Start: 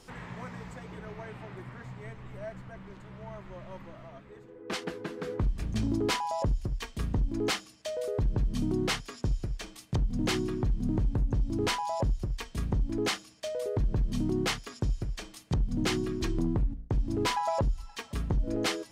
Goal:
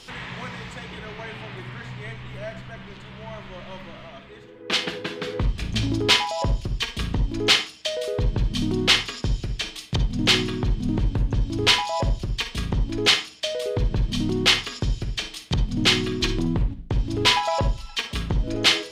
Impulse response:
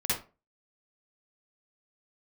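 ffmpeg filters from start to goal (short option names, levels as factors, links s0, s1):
-filter_complex "[0:a]equalizer=f=3300:w=0.85:g=14,asplit=2[s0][s1];[1:a]atrim=start_sample=2205[s2];[s1][s2]afir=irnorm=-1:irlink=0,volume=0.158[s3];[s0][s3]amix=inputs=2:normalize=0,volume=1.41"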